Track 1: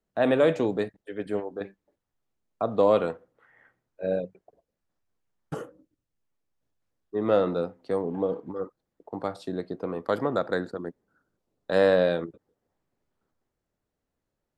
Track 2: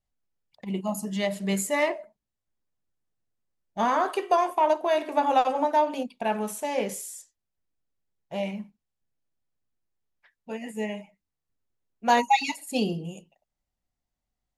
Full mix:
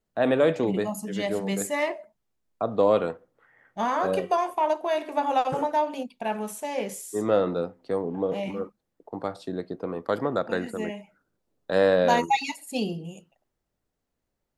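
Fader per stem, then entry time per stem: 0.0 dB, -2.0 dB; 0.00 s, 0.00 s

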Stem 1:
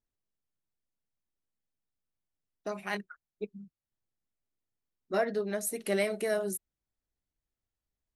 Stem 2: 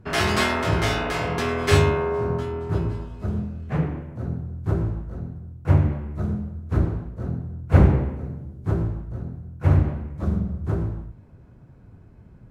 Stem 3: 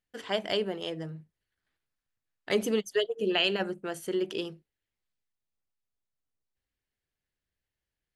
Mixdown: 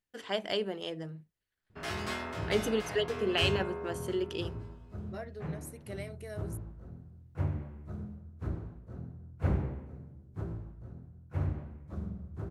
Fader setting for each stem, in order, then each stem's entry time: -14.0 dB, -15.0 dB, -3.0 dB; 0.00 s, 1.70 s, 0.00 s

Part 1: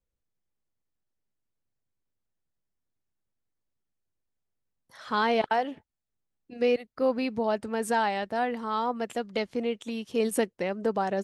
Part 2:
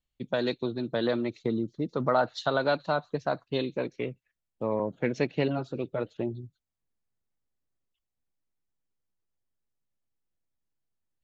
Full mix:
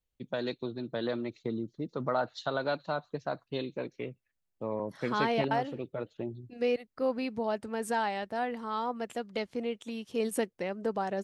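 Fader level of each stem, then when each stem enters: -4.5 dB, -5.5 dB; 0.00 s, 0.00 s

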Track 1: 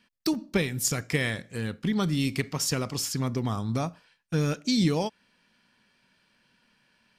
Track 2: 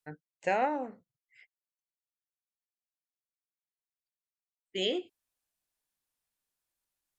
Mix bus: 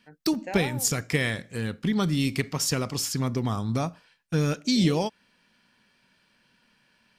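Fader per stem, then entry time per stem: +1.5 dB, -7.0 dB; 0.00 s, 0.00 s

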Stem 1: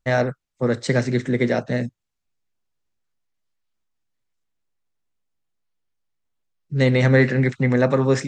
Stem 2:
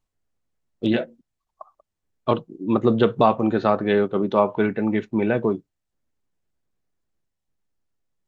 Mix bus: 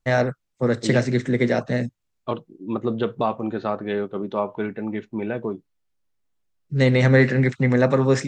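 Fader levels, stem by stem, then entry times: 0.0 dB, -6.0 dB; 0.00 s, 0.00 s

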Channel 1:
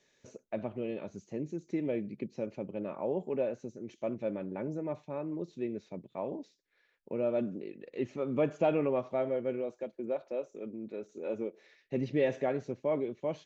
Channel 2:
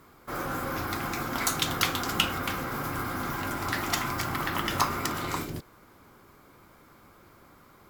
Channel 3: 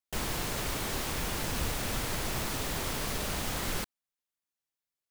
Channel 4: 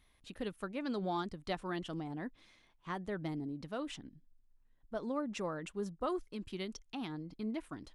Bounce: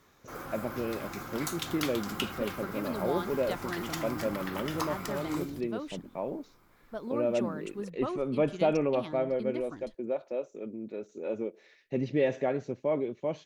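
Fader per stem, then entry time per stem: +2.0 dB, -9.0 dB, mute, +0.5 dB; 0.00 s, 0.00 s, mute, 2.00 s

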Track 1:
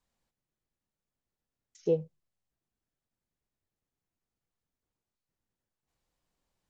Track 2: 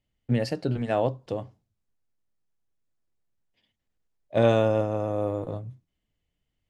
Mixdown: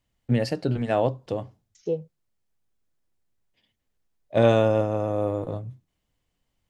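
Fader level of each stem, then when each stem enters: 0.0 dB, +2.0 dB; 0.00 s, 0.00 s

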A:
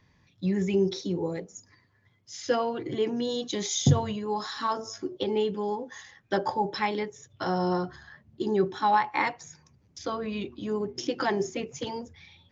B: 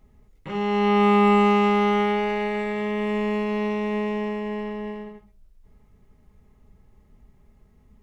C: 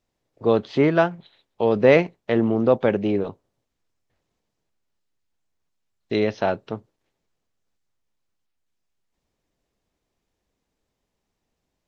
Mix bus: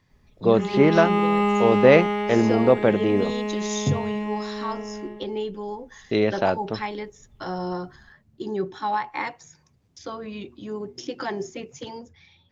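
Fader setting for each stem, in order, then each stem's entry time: -2.5 dB, -3.5 dB, +0.5 dB; 0.00 s, 0.10 s, 0.00 s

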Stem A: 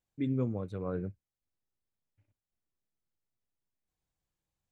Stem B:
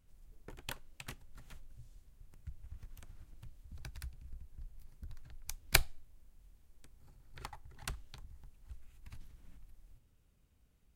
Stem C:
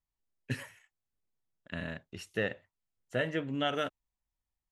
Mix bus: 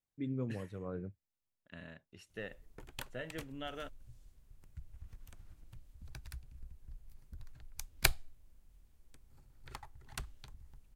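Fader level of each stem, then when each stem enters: -6.5 dB, -1.5 dB, -12.0 dB; 0.00 s, 2.30 s, 0.00 s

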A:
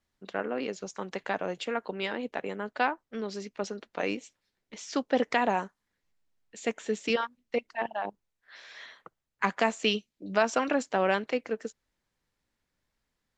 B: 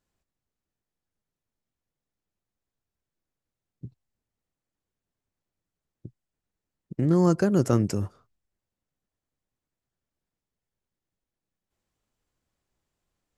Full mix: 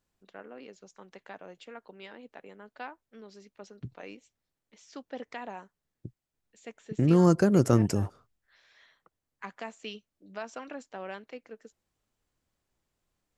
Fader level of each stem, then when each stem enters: -14.0 dB, 0.0 dB; 0.00 s, 0.00 s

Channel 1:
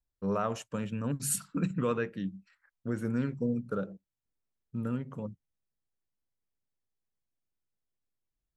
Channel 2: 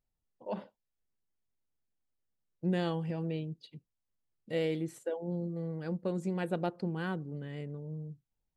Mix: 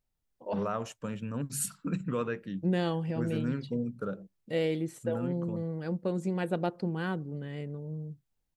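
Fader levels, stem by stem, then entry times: -2.0 dB, +2.5 dB; 0.30 s, 0.00 s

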